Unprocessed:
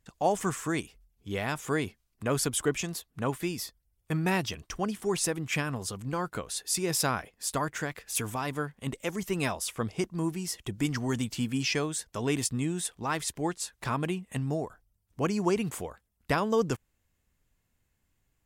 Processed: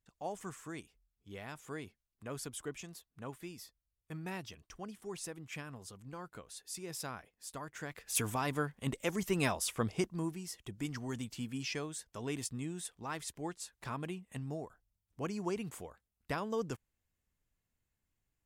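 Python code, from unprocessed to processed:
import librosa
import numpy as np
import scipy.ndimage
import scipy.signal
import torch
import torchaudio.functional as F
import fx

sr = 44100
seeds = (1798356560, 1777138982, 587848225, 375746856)

y = fx.gain(x, sr, db=fx.line((7.66, -14.5), (8.16, -2.0), (9.95, -2.0), (10.45, -10.0)))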